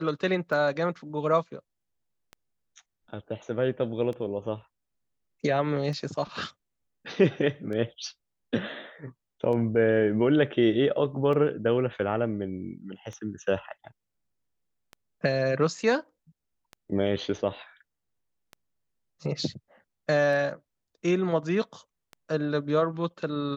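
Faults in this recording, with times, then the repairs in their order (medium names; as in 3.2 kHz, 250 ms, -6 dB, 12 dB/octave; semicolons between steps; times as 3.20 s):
tick 33 1/3 rpm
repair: de-click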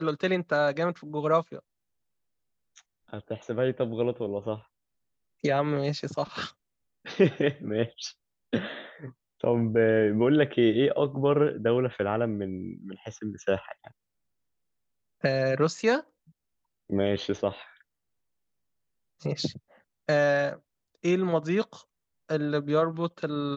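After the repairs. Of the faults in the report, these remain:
nothing left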